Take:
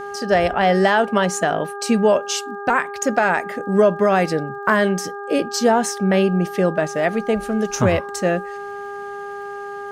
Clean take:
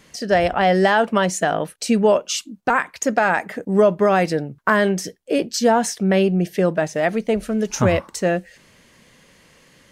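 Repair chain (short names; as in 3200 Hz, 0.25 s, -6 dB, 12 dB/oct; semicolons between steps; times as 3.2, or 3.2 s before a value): de-click; de-hum 403.9 Hz, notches 4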